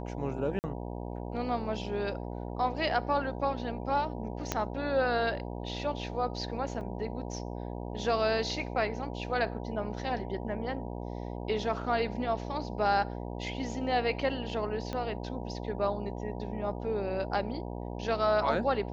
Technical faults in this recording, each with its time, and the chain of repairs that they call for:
buzz 60 Hz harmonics 16 -38 dBFS
0.59–0.64 s: dropout 49 ms
4.52 s: pop -14 dBFS
6.81 s: dropout 2.6 ms
14.93 s: pop -22 dBFS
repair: de-click; de-hum 60 Hz, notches 16; interpolate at 0.59 s, 49 ms; interpolate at 6.81 s, 2.6 ms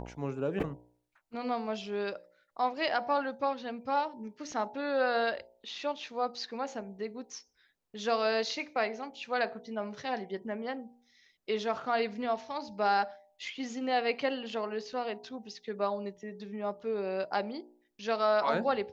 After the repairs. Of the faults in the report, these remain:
4.52 s: pop
14.93 s: pop

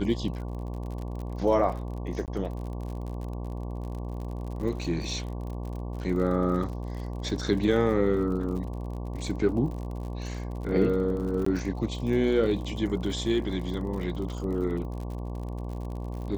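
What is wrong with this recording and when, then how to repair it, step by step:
buzz 60 Hz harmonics 19 -34 dBFS
crackle 54 per s -36 dBFS
2.26–2.28 s: dropout 18 ms
11.45–11.46 s: dropout 14 ms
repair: de-click; de-hum 60 Hz, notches 19; interpolate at 2.26 s, 18 ms; interpolate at 11.45 s, 14 ms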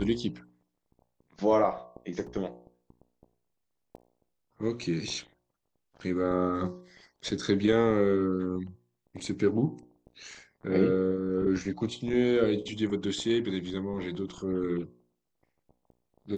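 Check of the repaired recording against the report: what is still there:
nothing left

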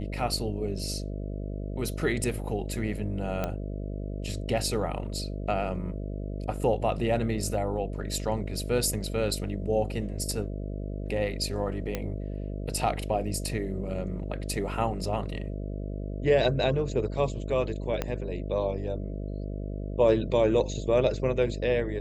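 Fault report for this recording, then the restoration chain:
buzz 50 Hz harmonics 13 -34 dBFS
3.44 s: pop -16 dBFS
11.95 s: pop -15 dBFS
18.02 s: pop -14 dBFS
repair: de-click; de-hum 50 Hz, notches 13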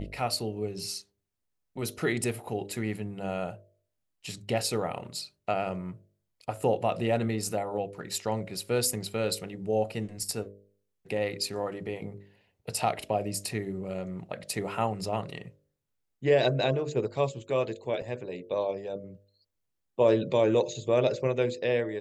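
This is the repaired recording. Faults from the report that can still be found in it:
18.02 s: pop

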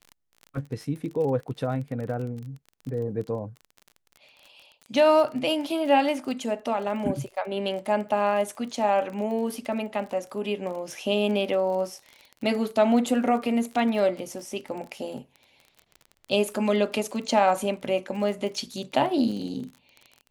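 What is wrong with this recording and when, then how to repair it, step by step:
crackle 30 per s -34 dBFS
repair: de-click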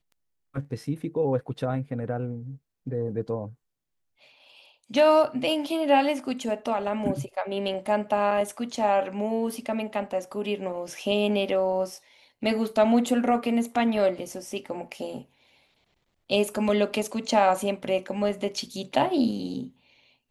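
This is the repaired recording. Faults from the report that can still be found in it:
nothing left

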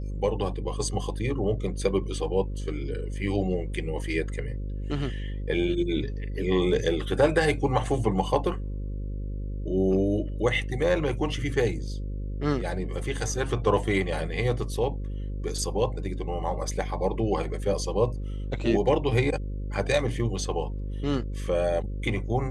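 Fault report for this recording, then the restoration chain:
buzz 50 Hz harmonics 11 -32 dBFS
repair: de-hum 50 Hz, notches 11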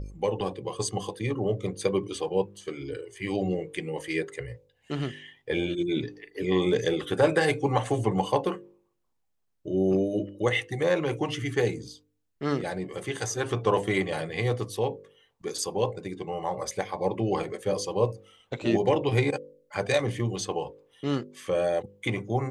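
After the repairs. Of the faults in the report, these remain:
nothing left

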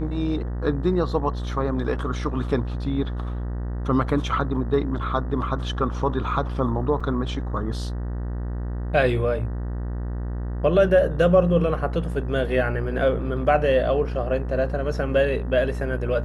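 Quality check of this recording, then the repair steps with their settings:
buzz 60 Hz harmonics 32 -28 dBFS
7.00–7.01 s: dropout 5.2 ms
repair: de-hum 60 Hz, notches 32; interpolate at 7.00 s, 5.2 ms

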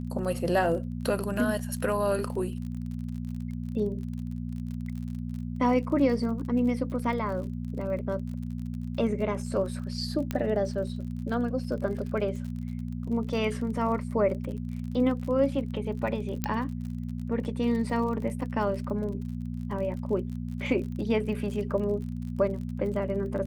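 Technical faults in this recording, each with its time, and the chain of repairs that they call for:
crackle 43 per s -37 dBFS
hum 60 Hz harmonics 4 -34 dBFS
10.31 s: pop -16 dBFS
16.44 s: pop -12 dBFS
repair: de-click; de-hum 60 Hz, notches 4

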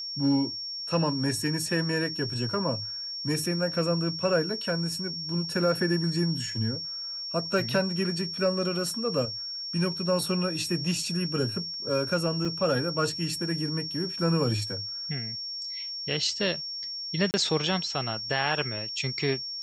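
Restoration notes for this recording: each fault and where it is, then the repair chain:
whine 5.5 kHz -33 dBFS
12.45 s: dropout 4.2 ms
17.31–17.34 s: dropout 29 ms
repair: band-stop 5.5 kHz, Q 30; interpolate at 12.45 s, 4.2 ms; interpolate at 17.31 s, 29 ms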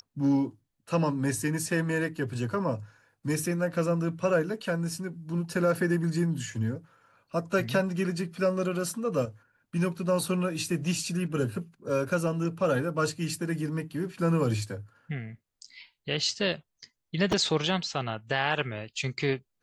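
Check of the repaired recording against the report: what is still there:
nothing left

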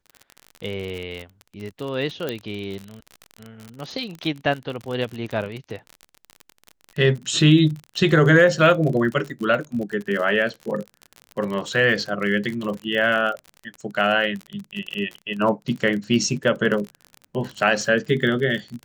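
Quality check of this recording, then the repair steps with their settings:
crackle 47 per s -28 dBFS
2.29 s: pop -12 dBFS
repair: de-click

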